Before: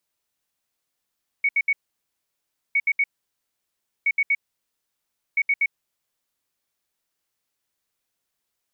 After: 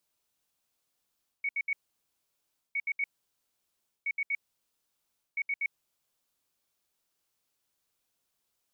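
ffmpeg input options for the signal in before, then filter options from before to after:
-f lavfi -i "aevalsrc='0.15*sin(2*PI*2230*t)*clip(min(mod(mod(t,1.31),0.12),0.05-mod(mod(t,1.31),0.12))/0.005,0,1)*lt(mod(t,1.31),0.36)':duration=5.24:sample_rate=44100"
-af "equalizer=frequency=1900:width=2.9:gain=-4.5,areverse,acompressor=threshold=-31dB:ratio=6,areverse"

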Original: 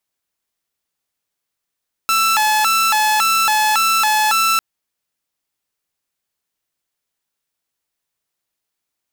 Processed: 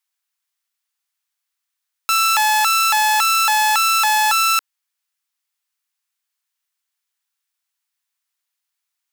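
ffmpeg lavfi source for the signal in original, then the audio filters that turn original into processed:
-f lavfi -i "aevalsrc='0.299*(2*mod((1094*t+236/1.8*(0.5-abs(mod(1.8*t,1)-0.5))),1)-1)':duration=2.5:sample_rate=44100"
-filter_complex "[0:a]highpass=480,acrossover=split=810[link_01][link_02];[link_01]acrusher=bits=4:mix=0:aa=0.000001[link_03];[link_03][link_02]amix=inputs=2:normalize=0"

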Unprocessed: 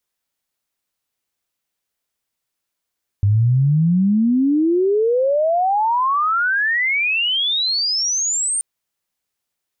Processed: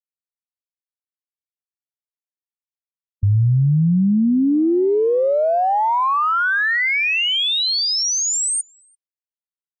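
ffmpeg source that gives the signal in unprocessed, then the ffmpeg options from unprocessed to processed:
-f lavfi -i "aevalsrc='pow(10,(-11.5-6*t/5.38)/20)*sin(2*PI*98*5.38/log(9000/98)*(exp(log(9000/98)*t/5.38)-1))':duration=5.38:sample_rate=44100"
-filter_complex "[0:a]afftfilt=real='re*gte(hypot(re,im),0.158)':imag='im*gte(hypot(re,im),0.158)':win_size=1024:overlap=0.75,asplit=2[link_01][link_02];[link_02]adelay=340,highpass=300,lowpass=3400,asoftclip=type=hard:threshold=-20.5dB,volume=-16dB[link_03];[link_01][link_03]amix=inputs=2:normalize=0"

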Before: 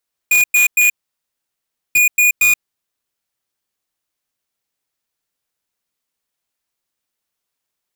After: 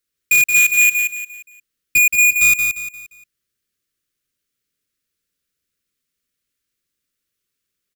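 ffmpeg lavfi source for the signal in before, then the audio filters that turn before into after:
-f lavfi -i "aevalsrc='0.266*(2*lt(mod(2450*t,1),0.5)-1)*clip(min(mod(mod(t,1.64),0.23),0.13-mod(mod(t,1.64),0.23))/0.005,0,1)*lt(mod(t,1.64),0.69)':duration=3.28:sample_rate=44100"
-filter_complex "[0:a]asuperstop=centerf=810:order=4:qfactor=1.1,lowshelf=frequency=280:gain=5,asplit=2[link_01][link_02];[link_02]aecho=0:1:175|350|525|700:0.501|0.175|0.0614|0.0215[link_03];[link_01][link_03]amix=inputs=2:normalize=0"

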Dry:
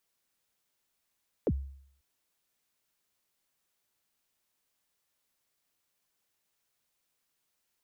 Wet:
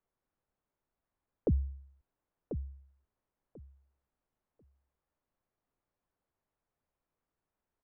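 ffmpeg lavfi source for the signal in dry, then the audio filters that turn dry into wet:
-f lavfi -i "aevalsrc='0.0794*pow(10,-3*t/0.64)*sin(2*PI*(570*0.052/log(68/570)*(exp(log(68/570)*min(t,0.052)/0.052)-1)+68*max(t-0.052,0)))':duration=0.54:sample_rate=44100"
-af "lowpass=1100,lowshelf=frequency=66:gain=10.5,aecho=1:1:1041|2082|3123:0.355|0.0639|0.0115"

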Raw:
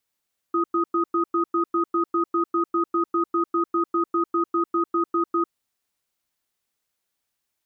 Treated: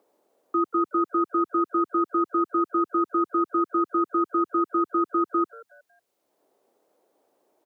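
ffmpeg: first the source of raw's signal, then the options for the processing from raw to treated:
-f lavfi -i "aevalsrc='0.0841*(sin(2*PI*339*t)+sin(2*PI*1250*t))*clip(min(mod(t,0.2),0.1-mod(t,0.2))/0.005,0,1)':duration=4.99:sample_rate=44100"
-filter_complex "[0:a]highpass=79,acrossover=split=150|340|630[link_01][link_02][link_03][link_04];[link_03]acompressor=mode=upward:threshold=-44dB:ratio=2.5[link_05];[link_01][link_02][link_05][link_04]amix=inputs=4:normalize=0,asplit=4[link_06][link_07][link_08][link_09];[link_07]adelay=184,afreqshift=120,volume=-22dB[link_10];[link_08]adelay=368,afreqshift=240,volume=-30.9dB[link_11];[link_09]adelay=552,afreqshift=360,volume=-39.7dB[link_12];[link_06][link_10][link_11][link_12]amix=inputs=4:normalize=0"

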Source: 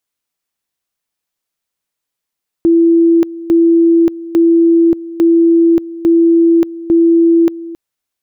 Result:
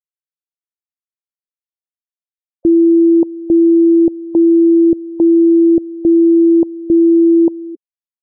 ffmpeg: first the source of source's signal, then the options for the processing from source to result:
-f lavfi -i "aevalsrc='pow(10,(-5.5-17.5*gte(mod(t,0.85),0.58))/20)*sin(2*PI*334*t)':duration=5.1:sample_rate=44100"
-af "afftfilt=real='re*gte(hypot(re,im),0.1)':imag='im*gte(hypot(re,im),0.1)':win_size=1024:overlap=0.75"

